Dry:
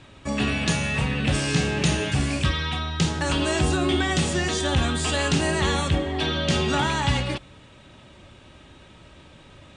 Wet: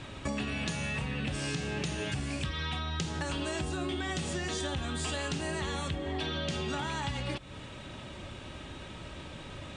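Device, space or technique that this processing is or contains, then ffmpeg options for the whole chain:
serial compression, leveller first: -af "acompressor=threshold=-25dB:ratio=2,acompressor=threshold=-37dB:ratio=5,volume=4.5dB"

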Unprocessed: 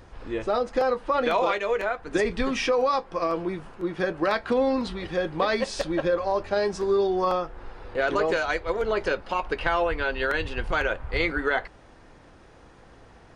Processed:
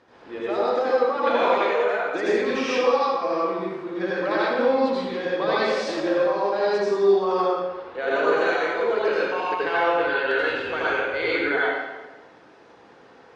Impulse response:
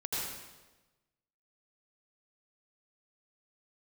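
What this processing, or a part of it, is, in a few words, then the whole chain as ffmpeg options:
supermarket ceiling speaker: -filter_complex "[0:a]asettb=1/sr,asplit=3[a][b][c];[a]atrim=end=7.744[d];[b]atrim=start=7.74:end=8.63,asetpts=PTS-STARTPTS,afade=t=in:d=0.004:c=qsin,afade=t=out:st=0.886:d=0.004:c=qsin,bandreject=f=5k:w=5.5[e];[c]atrim=start=8.626[f];[d][e]acrossfade=d=0.004:c1=hsin:c2=qsin[g];[g][f]acrossfade=d=0.004:c1=qsin:c2=hsin,highpass=260,lowpass=5k[h];[1:a]atrim=start_sample=2205[i];[h][i]afir=irnorm=-1:irlink=0,volume=-1.5dB"

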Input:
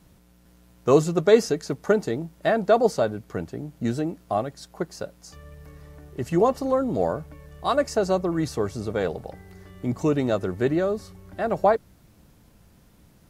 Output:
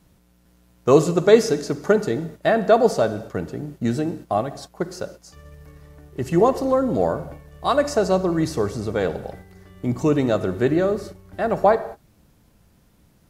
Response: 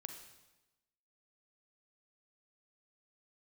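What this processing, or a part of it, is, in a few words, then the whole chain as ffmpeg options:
keyed gated reverb: -filter_complex "[0:a]asplit=3[a][b][c];[1:a]atrim=start_sample=2205[d];[b][d]afir=irnorm=-1:irlink=0[e];[c]apad=whole_len=586136[f];[e][f]sidechaingate=range=-33dB:threshold=-42dB:ratio=16:detection=peak,volume=3dB[g];[a][g]amix=inputs=2:normalize=0,volume=-2dB"

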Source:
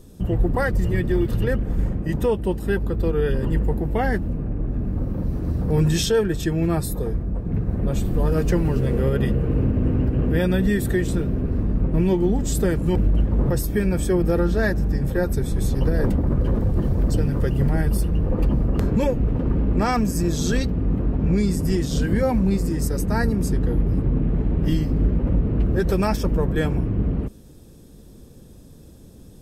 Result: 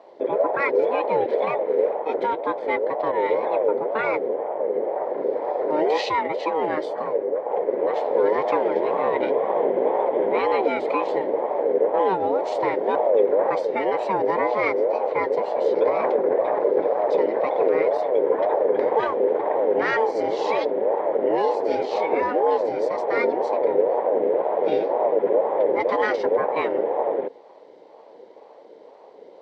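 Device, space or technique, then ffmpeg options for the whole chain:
voice changer toy: -af "aeval=exprs='val(0)*sin(2*PI*560*n/s+560*0.2/2*sin(2*PI*2*n/s))':c=same,highpass=440,equalizer=f=460:t=q:w=4:g=5,equalizer=f=700:t=q:w=4:g=-8,equalizer=f=1.2k:t=q:w=4:g=-6,equalizer=f=2k:t=q:w=4:g=6,equalizer=f=2.8k:t=q:w=4:g=-6,lowpass=f=3.8k:w=0.5412,lowpass=f=3.8k:w=1.3066,volume=4dB"

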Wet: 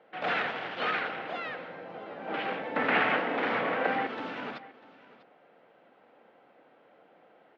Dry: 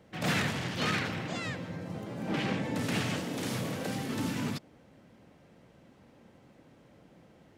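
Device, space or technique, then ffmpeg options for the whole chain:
phone earpiece: -filter_complex "[0:a]highpass=420,equalizer=f=470:t=q:w=4:g=4,equalizer=f=740:t=q:w=4:g=7,equalizer=f=1.4k:t=q:w=4:g=6,lowpass=f=3.3k:w=0.5412,lowpass=f=3.3k:w=1.3066,asettb=1/sr,asplit=3[a][b][c];[a]atrim=end=2.764[d];[b]atrim=start=2.76:end=4.07,asetpts=PTS-STARTPTS,afade=t=in:d=0.004:c=qsin,afade=t=out:st=1.306:d=0.004:c=qsin,equalizer=f=125:t=o:w=1:g=5,equalizer=f=250:t=o:w=1:g=7,equalizer=f=500:t=o:w=1:g=3,equalizer=f=1k:t=o:w=1:g=7,equalizer=f=2k:t=o:w=1:g=10,equalizer=f=8k:t=o:w=1:g=-6[e];[c]atrim=start=4.066[f];[d][e]acrossfade=d=0.004:c1=hsin:c2=qsin[g];[g][f]acrossfade=d=0.004:c1=qsin:c2=hsin,aecho=1:1:646:0.112"

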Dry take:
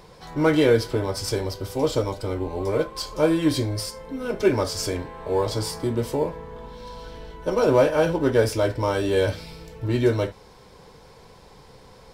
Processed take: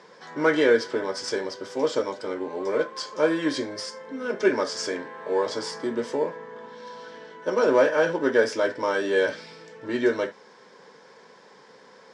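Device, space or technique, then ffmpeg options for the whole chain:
television speaker: -af "highpass=f=220:w=0.5412,highpass=f=220:w=1.3066,equalizer=f=310:t=q:w=4:g=-5,equalizer=f=740:t=q:w=4:g=-5,equalizer=f=1.7k:t=q:w=4:g=8,equalizer=f=2.6k:t=q:w=4:g=-4,equalizer=f=4.1k:t=q:w=4:g=-5,lowpass=f=6.9k:w=0.5412,lowpass=f=6.9k:w=1.3066"

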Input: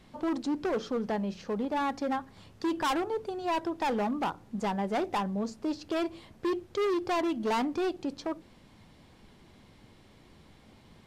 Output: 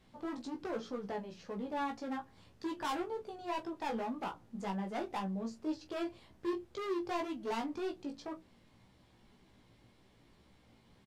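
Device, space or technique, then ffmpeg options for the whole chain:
double-tracked vocal: -filter_complex "[0:a]asplit=2[a][b];[b]adelay=26,volume=-10.5dB[c];[a][c]amix=inputs=2:normalize=0,flanger=delay=15.5:depth=2.2:speed=1.9,volume=-5.5dB"

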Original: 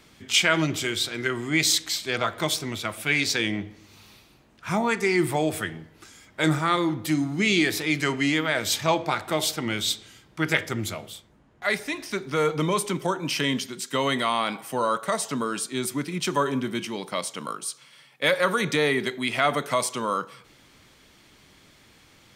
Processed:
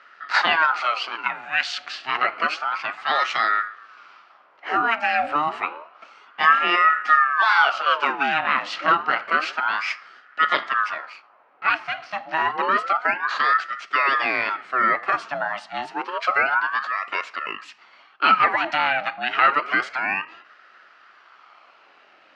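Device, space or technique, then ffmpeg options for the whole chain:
voice changer toy: -filter_complex "[0:a]asettb=1/sr,asplit=3[a][b][c];[a]atrim=end=1.154[d];[b]atrim=start=1.15:end=1.78,asetpts=PTS-STARTPTS,afade=t=in:d=0.004:c=qsin,afade=t=out:st=0.626:d=0.004:c=qsin,highpass=f=760:p=1[e];[c]atrim=start=1.776[f];[d][e]acrossfade=d=0.004:c1=hsin:c2=qsin[g];[g][f]acrossfade=d=0.004:c1=qsin:c2=hsin,aeval=exprs='val(0)*sin(2*PI*1000*n/s+1000*0.6/0.29*sin(2*PI*0.29*n/s))':c=same,highpass=460,equalizer=f=480:t=q:w=4:g=-6,equalizer=f=930:t=q:w=4:g=-3,equalizer=f=1.3k:t=q:w=4:g=8,equalizer=f=3.6k:t=q:w=4:g=-9,lowpass=f=3.7k:w=0.5412,lowpass=f=3.7k:w=1.3066,volume=6.5dB"

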